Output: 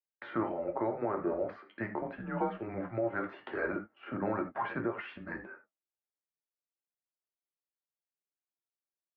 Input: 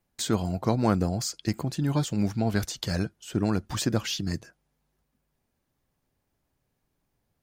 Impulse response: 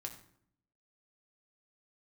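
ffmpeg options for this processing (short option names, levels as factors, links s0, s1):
-filter_complex "[0:a]atempo=0.81,agate=range=0.0224:threshold=0.00398:ratio=3:detection=peak,asplit=2[s0][s1];[s1]acompressor=threshold=0.0141:ratio=6,volume=1[s2];[s0][s2]amix=inputs=2:normalize=0,highpass=f=440:t=q:w=0.5412,highpass=f=440:t=q:w=1.307,lowpass=f=2100:t=q:w=0.5176,lowpass=f=2100:t=q:w=0.7071,lowpass=f=2100:t=q:w=1.932,afreqshift=-110[s3];[1:a]atrim=start_sample=2205,afade=t=out:st=0.14:d=0.01,atrim=end_sample=6615[s4];[s3][s4]afir=irnorm=-1:irlink=0,alimiter=level_in=1.33:limit=0.0631:level=0:latency=1:release=232,volume=0.75,volume=1.68"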